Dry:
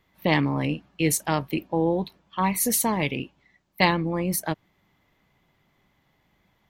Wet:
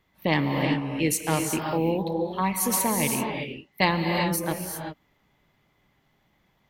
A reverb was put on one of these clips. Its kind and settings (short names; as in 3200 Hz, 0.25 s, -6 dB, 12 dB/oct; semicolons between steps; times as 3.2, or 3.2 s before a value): non-linear reverb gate 0.41 s rising, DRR 2.5 dB; gain -2 dB